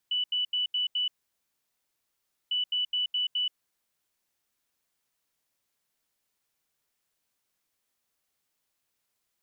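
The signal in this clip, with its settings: beep pattern sine 2970 Hz, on 0.13 s, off 0.08 s, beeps 5, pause 1.43 s, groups 2, -25 dBFS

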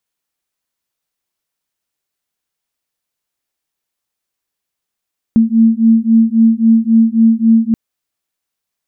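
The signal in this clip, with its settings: beating tones 224 Hz, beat 3.7 Hz, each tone -10 dBFS 2.38 s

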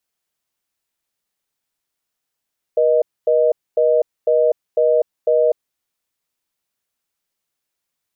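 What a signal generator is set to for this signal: call progress tone reorder tone, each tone -14.5 dBFS 2.97 s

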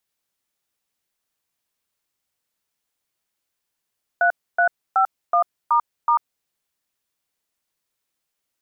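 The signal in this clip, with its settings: DTMF "3351**", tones 93 ms, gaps 0.281 s, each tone -16.5 dBFS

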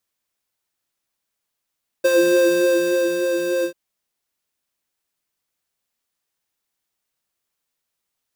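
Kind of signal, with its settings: synth patch with filter wobble F4, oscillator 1 triangle, oscillator 2 square, interval +7 st, oscillator 2 level -2 dB, sub -26 dB, noise -14.5 dB, filter highpass, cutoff 220 Hz, Q 1.9, filter envelope 1 oct, attack 13 ms, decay 1.14 s, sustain -7 dB, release 0.09 s, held 1.60 s, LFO 3.4 Hz, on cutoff 0.8 oct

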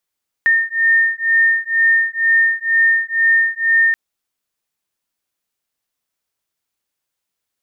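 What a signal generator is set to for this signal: beating tones 1820 Hz, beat 2.1 Hz, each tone -15 dBFS 3.48 s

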